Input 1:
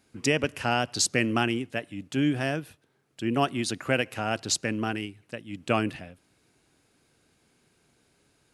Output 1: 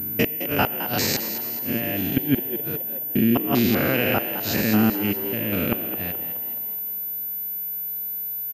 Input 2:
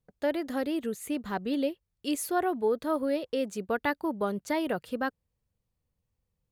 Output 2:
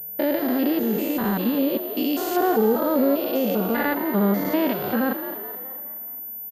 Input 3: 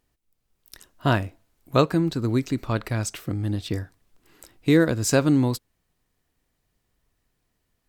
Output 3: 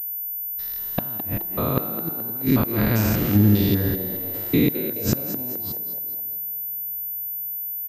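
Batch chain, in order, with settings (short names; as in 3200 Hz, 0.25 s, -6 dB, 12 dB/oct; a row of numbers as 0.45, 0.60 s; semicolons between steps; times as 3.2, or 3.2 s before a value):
stepped spectrum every 0.2 s; de-hum 338.8 Hz, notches 3; dynamic EQ 210 Hz, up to +7 dB, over -45 dBFS, Q 3; in parallel at +0.5 dB: compressor 20:1, threshold -35 dBFS; on the sum: flipped gate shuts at -15 dBFS, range -27 dB; on a send: frequency-shifting echo 0.212 s, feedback 48%, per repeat +87 Hz, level -11 dB; on the sum: plate-style reverb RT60 3.7 s, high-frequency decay 0.9×, DRR 18 dB; pulse-width modulation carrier 14000 Hz; match loudness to -23 LUFS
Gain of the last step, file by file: +7.0, +7.5, +7.5 dB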